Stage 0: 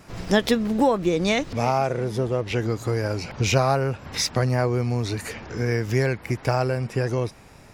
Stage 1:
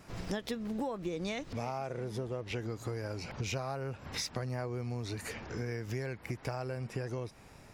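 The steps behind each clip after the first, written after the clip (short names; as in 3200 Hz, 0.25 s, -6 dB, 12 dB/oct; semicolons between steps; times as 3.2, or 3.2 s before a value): compressor 4:1, threshold -28 dBFS, peak gain reduction 13 dB; gain -6.5 dB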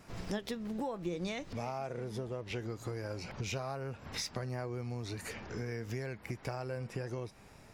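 flange 0.51 Hz, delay 4.2 ms, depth 1.8 ms, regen +86%; gain +3 dB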